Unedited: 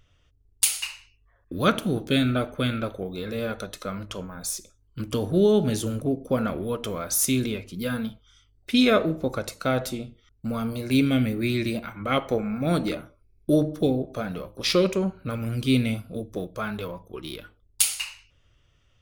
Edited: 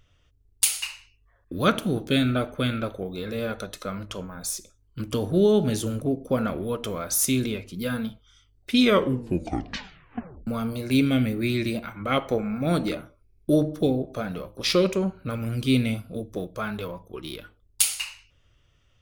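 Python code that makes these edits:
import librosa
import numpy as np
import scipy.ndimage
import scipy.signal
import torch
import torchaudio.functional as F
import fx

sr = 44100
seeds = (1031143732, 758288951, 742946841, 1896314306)

y = fx.edit(x, sr, fx.tape_stop(start_s=8.81, length_s=1.66), tone=tone)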